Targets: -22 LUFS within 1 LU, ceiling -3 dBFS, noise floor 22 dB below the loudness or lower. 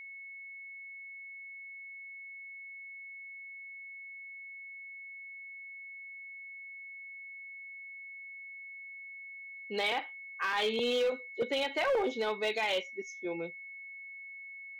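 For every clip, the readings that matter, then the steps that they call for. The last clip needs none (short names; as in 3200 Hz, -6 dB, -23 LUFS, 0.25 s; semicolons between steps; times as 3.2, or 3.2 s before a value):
clipped 0.6%; flat tops at -25.0 dBFS; steady tone 2200 Hz; tone level -44 dBFS; loudness -37.5 LUFS; peak -25.0 dBFS; loudness target -22.0 LUFS
-> clip repair -25 dBFS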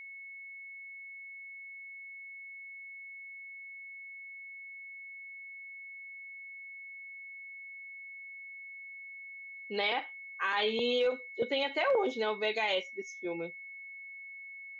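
clipped 0.0%; steady tone 2200 Hz; tone level -44 dBFS
-> notch 2200 Hz, Q 30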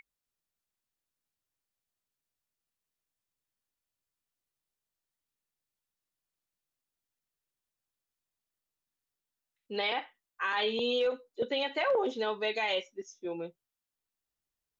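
steady tone none; loudness -32.0 LUFS; peak -19.5 dBFS; loudness target -22.0 LUFS
-> gain +10 dB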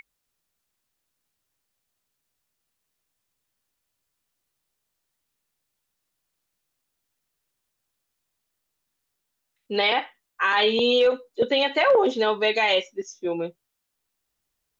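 loudness -22.0 LUFS; peak -9.5 dBFS; noise floor -80 dBFS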